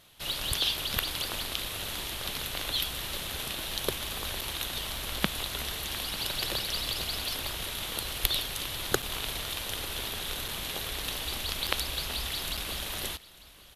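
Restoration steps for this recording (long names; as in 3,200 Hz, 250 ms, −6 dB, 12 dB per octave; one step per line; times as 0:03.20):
repair the gap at 0:04.41/0:09.02/0:10.48/0:11.67/0:12.57, 5.2 ms
echo removal 896 ms −20 dB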